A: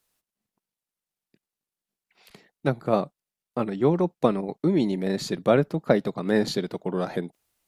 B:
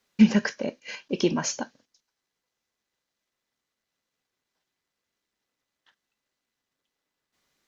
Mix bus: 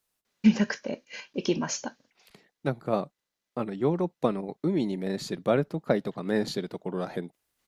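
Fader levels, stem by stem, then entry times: −4.5, −3.0 decibels; 0.00, 0.25 seconds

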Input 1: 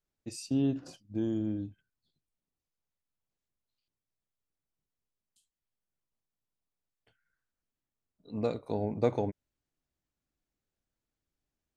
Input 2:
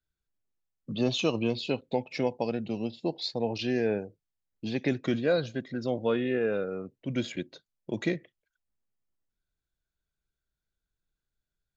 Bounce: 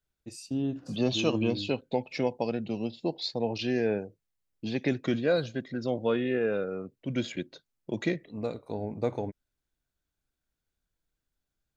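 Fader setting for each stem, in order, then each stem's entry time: −2.0, 0.0 decibels; 0.00, 0.00 seconds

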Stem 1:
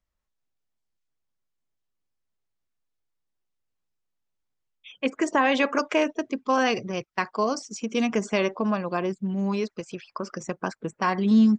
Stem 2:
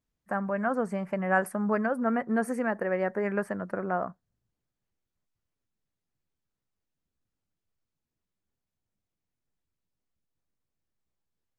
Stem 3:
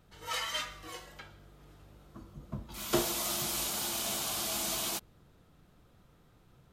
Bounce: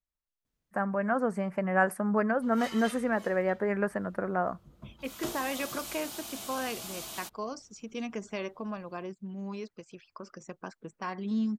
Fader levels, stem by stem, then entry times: −12.0, 0.0, −7.5 decibels; 0.00, 0.45, 2.30 seconds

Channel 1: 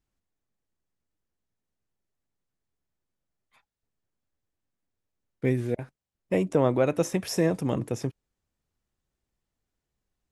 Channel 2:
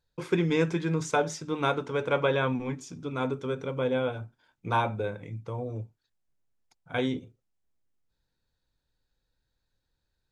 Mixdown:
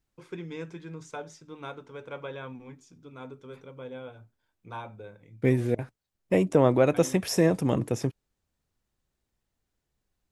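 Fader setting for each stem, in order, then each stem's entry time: +2.0, −13.0 decibels; 0.00, 0.00 seconds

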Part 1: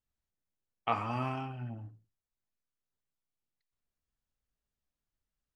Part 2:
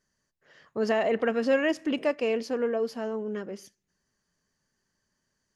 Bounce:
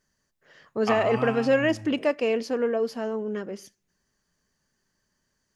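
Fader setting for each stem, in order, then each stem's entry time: +3.0, +2.5 decibels; 0.00, 0.00 seconds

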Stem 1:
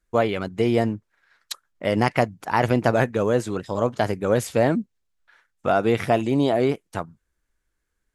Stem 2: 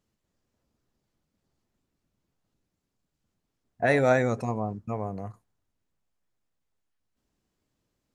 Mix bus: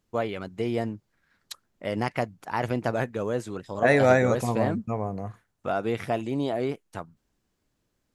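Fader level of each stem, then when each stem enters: −7.5, +2.5 decibels; 0.00, 0.00 seconds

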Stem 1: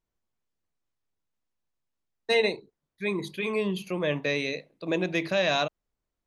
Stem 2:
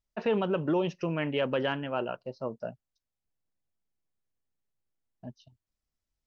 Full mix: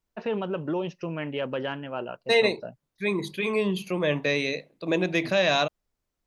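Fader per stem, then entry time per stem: +2.5, −1.5 decibels; 0.00, 0.00 seconds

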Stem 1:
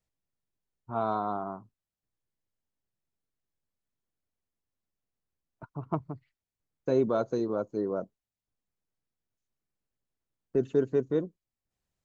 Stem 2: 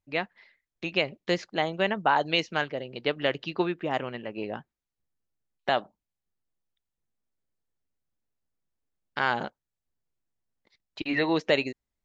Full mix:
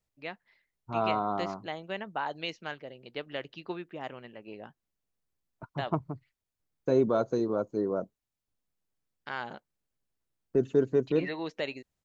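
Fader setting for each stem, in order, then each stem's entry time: +1.0, −10.5 decibels; 0.00, 0.10 seconds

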